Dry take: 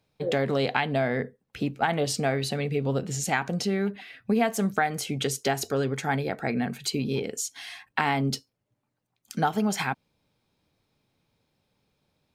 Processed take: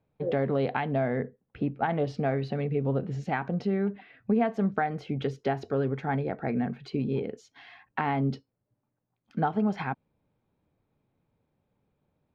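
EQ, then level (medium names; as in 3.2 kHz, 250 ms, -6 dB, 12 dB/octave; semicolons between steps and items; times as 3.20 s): dynamic bell 6.3 kHz, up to +5 dB, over -43 dBFS, Q 0.93; distance through air 310 m; treble shelf 2.2 kHz -11.5 dB; 0.0 dB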